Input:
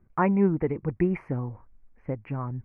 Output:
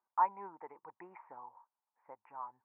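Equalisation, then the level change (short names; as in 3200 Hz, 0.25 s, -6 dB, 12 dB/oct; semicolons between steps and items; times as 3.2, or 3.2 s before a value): ladder band-pass 980 Hz, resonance 75%; air absorption 220 m; 0.0 dB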